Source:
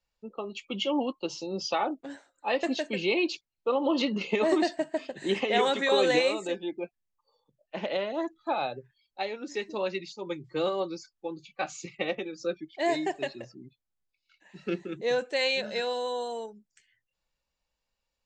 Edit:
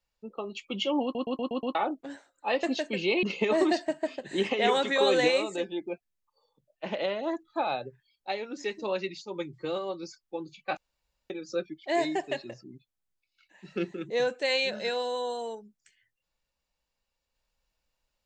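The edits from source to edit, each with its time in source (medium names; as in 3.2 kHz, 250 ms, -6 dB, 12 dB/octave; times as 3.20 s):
1.03 s: stutter in place 0.12 s, 6 plays
3.23–4.14 s: delete
10.56–10.94 s: gain -4 dB
11.68–12.21 s: room tone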